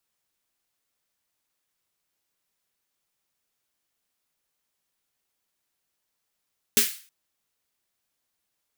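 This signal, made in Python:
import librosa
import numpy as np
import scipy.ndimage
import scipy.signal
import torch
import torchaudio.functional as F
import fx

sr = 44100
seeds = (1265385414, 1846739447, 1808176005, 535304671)

y = fx.drum_snare(sr, seeds[0], length_s=0.32, hz=230.0, second_hz=410.0, noise_db=8.5, noise_from_hz=1700.0, decay_s=0.17, noise_decay_s=0.41)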